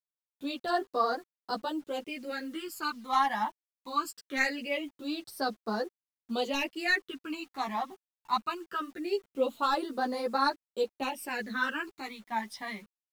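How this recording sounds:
phaser sweep stages 12, 0.22 Hz, lowest notch 450–2,700 Hz
a quantiser's noise floor 10 bits, dither none
a shimmering, thickened sound

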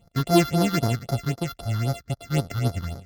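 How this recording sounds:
a buzz of ramps at a fixed pitch in blocks of 64 samples
phaser sweep stages 6, 3.8 Hz, lowest notch 620–2,700 Hz
MP3

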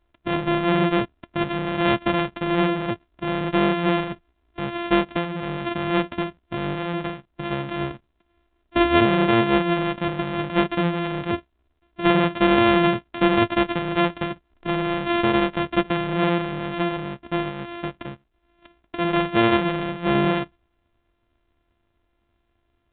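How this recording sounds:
a buzz of ramps at a fixed pitch in blocks of 128 samples
mu-law

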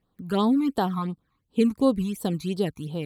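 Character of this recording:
phaser sweep stages 12, 2.8 Hz, lowest notch 520–2,300 Hz

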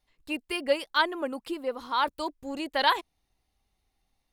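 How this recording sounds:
background noise floor −79 dBFS
spectral slope +1.5 dB per octave

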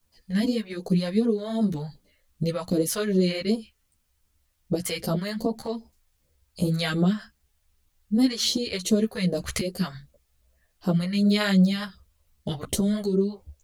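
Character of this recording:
phaser sweep stages 2, 2.6 Hz, lowest notch 260–2,100 Hz
a quantiser's noise floor 12 bits, dither triangular
a shimmering, thickened sound

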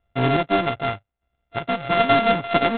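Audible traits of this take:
a buzz of ramps at a fixed pitch in blocks of 64 samples
chopped level 0.82 Hz, depth 65%, duty 30%
IMA ADPCM

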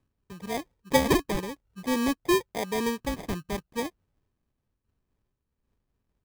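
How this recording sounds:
phaser sweep stages 6, 0.53 Hz, lowest notch 760–1,600 Hz
aliases and images of a low sample rate 1,400 Hz, jitter 0%
amplitude modulation by smooth noise

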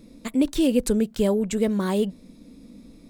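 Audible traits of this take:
background noise floor −51 dBFS
spectral slope −5.5 dB per octave

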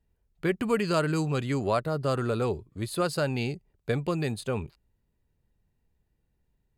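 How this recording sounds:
background noise floor −75 dBFS
spectral slope −6.0 dB per octave

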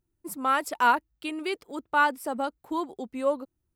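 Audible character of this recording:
background noise floor −81 dBFS
spectral slope −2.0 dB per octave

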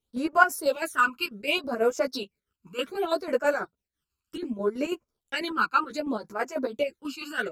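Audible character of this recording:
phaser sweep stages 12, 0.66 Hz, lowest notch 600–3,800 Hz
chopped level 6.1 Hz, depth 60%, duty 60%
a shimmering, thickened sound

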